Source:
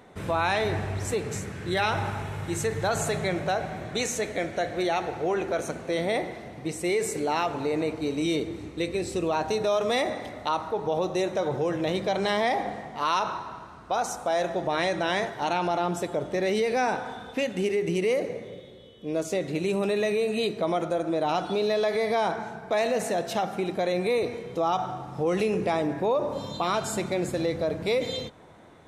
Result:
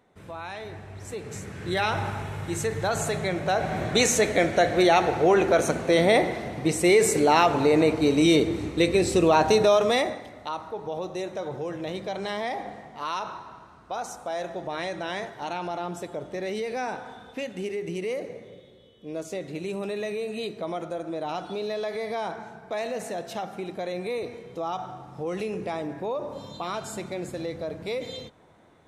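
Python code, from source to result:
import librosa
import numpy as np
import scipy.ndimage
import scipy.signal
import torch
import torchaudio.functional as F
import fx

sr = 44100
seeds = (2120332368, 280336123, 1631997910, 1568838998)

y = fx.gain(x, sr, db=fx.line((0.84, -12.0), (1.65, 0.0), (3.4, 0.0), (3.8, 7.5), (9.58, 7.5), (10.02, 1.5), (10.24, -5.5)))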